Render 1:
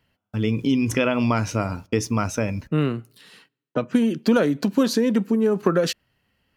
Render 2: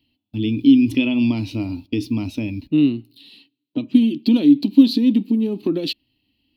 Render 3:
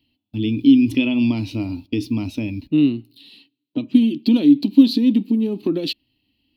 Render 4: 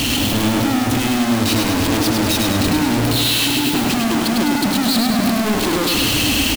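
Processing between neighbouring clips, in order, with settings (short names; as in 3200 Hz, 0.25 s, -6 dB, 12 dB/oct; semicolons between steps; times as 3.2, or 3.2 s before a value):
EQ curve 110 Hz 0 dB, 180 Hz -4 dB, 290 Hz +14 dB, 470 Hz -10 dB, 890 Hz -7 dB, 1500 Hz -23 dB, 2600 Hz +5 dB, 4200 Hz +11 dB, 6300 Hz -14 dB, 14000 Hz +2 dB; harmonic-percussive split harmonic +3 dB; gain -4.5 dB
nothing audible
infinite clipping; on a send: feedback echo 0.102 s, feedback 59%, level -4 dB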